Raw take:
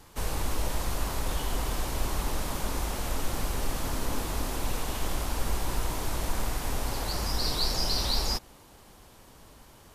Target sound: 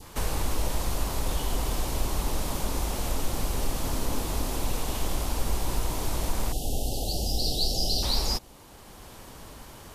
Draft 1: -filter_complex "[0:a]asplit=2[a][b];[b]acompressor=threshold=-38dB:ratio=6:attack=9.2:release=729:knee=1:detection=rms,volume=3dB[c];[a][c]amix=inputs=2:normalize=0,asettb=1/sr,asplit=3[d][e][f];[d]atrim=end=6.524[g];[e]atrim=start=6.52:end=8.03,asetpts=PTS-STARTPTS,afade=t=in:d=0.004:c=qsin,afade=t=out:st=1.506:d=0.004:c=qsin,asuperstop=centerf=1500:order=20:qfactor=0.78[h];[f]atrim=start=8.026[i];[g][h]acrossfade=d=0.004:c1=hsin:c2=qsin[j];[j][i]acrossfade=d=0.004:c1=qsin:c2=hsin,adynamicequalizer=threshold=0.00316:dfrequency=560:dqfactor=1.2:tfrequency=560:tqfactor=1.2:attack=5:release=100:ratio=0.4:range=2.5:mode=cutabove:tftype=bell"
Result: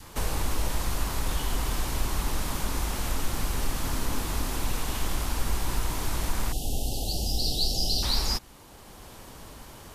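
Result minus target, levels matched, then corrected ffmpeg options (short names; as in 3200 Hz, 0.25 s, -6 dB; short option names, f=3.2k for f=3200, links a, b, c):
500 Hz band -3.5 dB
-filter_complex "[0:a]asplit=2[a][b];[b]acompressor=threshold=-38dB:ratio=6:attack=9.2:release=729:knee=1:detection=rms,volume=3dB[c];[a][c]amix=inputs=2:normalize=0,asettb=1/sr,asplit=3[d][e][f];[d]atrim=end=6.524[g];[e]atrim=start=6.52:end=8.03,asetpts=PTS-STARTPTS,afade=t=in:d=0.004:c=qsin,afade=t=out:st=1.506:d=0.004:c=qsin,asuperstop=centerf=1500:order=20:qfactor=0.78[h];[f]atrim=start=8.026[i];[g][h]acrossfade=d=0.004:c1=hsin:c2=qsin[j];[j][i]acrossfade=d=0.004:c1=qsin:c2=hsin,adynamicequalizer=threshold=0.00316:dfrequency=1600:dqfactor=1.2:tfrequency=1600:tqfactor=1.2:attack=5:release=100:ratio=0.4:range=2.5:mode=cutabove:tftype=bell"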